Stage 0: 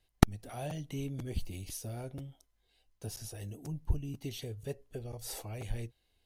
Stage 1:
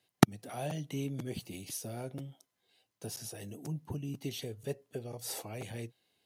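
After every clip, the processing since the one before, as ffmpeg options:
ffmpeg -i in.wav -af "highpass=frequency=130:width=0.5412,highpass=frequency=130:width=1.3066,volume=2.5dB" out.wav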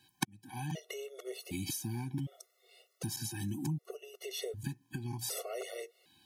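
ffmpeg -i in.wav -af "acompressor=threshold=-45dB:ratio=8,afftfilt=real='re*gt(sin(2*PI*0.66*pts/sr)*(1-2*mod(floor(b*sr/1024/370),2)),0)':imag='im*gt(sin(2*PI*0.66*pts/sr)*(1-2*mod(floor(b*sr/1024/370),2)),0)':win_size=1024:overlap=0.75,volume=13dB" out.wav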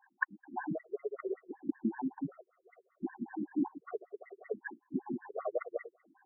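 ffmpeg -i in.wav -filter_complex "[0:a]asplit=2[link_01][link_02];[link_02]asoftclip=type=tanh:threshold=-23dB,volume=-12dB[link_03];[link_01][link_03]amix=inputs=2:normalize=0,afftfilt=real='re*between(b*sr/1024,240*pow(1500/240,0.5+0.5*sin(2*PI*5.2*pts/sr))/1.41,240*pow(1500/240,0.5+0.5*sin(2*PI*5.2*pts/sr))*1.41)':imag='im*between(b*sr/1024,240*pow(1500/240,0.5+0.5*sin(2*PI*5.2*pts/sr))/1.41,240*pow(1500/240,0.5+0.5*sin(2*PI*5.2*pts/sr))*1.41)':win_size=1024:overlap=0.75,volume=10dB" out.wav

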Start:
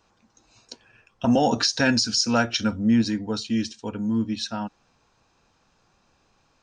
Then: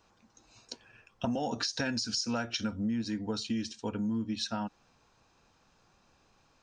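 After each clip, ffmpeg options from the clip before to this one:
ffmpeg -i in.wav -af "acompressor=threshold=-27dB:ratio=12,volume=-2dB" out.wav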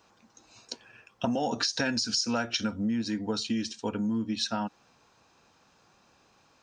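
ffmpeg -i in.wav -af "highpass=frequency=150:poles=1,volume=4.5dB" out.wav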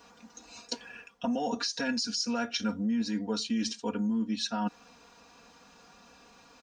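ffmpeg -i in.wav -af "areverse,acompressor=threshold=-37dB:ratio=5,areverse,aecho=1:1:4.2:0.83,volume=4.5dB" out.wav

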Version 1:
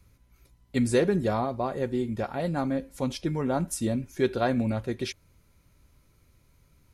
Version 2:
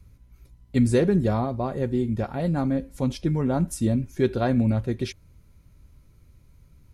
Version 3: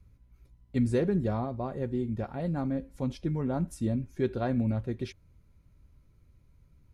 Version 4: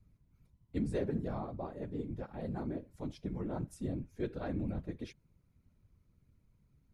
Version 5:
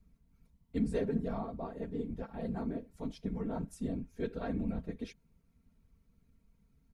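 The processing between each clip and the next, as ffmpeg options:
ffmpeg -i in.wav -af "lowshelf=frequency=270:gain=11,volume=-1.5dB" out.wav
ffmpeg -i in.wav -af "highshelf=frequency=4200:gain=-7.5,volume=-6.5dB" out.wav
ffmpeg -i in.wav -af "afftfilt=real='hypot(re,im)*cos(2*PI*random(0))':imag='hypot(re,im)*sin(2*PI*random(1))':win_size=512:overlap=0.75,volume=-2dB" out.wav
ffmpeg -i in.wav -af "aecho=1:1:4.4:0.65" out.wav

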